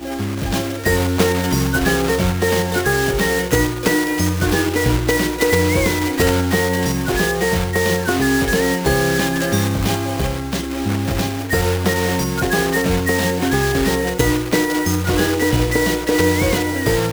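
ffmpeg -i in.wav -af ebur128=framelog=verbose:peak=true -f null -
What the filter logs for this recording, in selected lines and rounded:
Integrated loudness:
  I:         -17.8 LUFS
  Threshold: -27.8 LUFS
Loudness range:
  LRA:         2.1 LU
  Threshold: -37.8 LUFS
  LRA low:   -19.2 LUFS
  LRA high:  -17.1 LUFS
True peak:
  Peak:       -0.6 dBFS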